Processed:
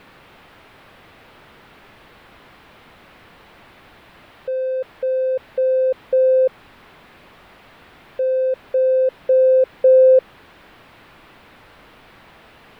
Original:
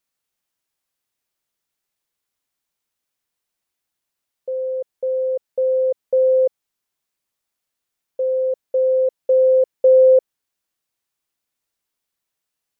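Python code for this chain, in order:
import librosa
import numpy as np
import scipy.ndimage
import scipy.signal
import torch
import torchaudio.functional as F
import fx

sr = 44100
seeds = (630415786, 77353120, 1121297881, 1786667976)

y = x + 0.5 * 10.0 ** (-31.0 / 20.0) * np.sign(x)
y = fx.air_absorb(y, sr, metres=490.0)
y = y * librosa.db_to_amplitude(1.5)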